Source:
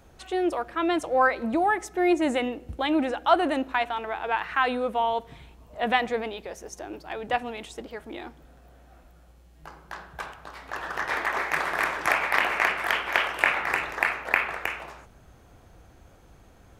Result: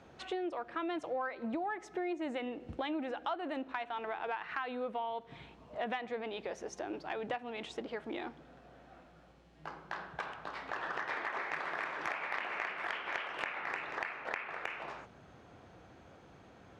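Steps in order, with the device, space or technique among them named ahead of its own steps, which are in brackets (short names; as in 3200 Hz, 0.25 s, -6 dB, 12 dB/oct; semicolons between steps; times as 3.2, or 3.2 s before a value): AM radio (BPF 130–4300 Hz; compressor 6:1, threshold -35 dBFS, peak gain reduction 19.5 dB; soft clip -20 dBFS, distortion -27 dB)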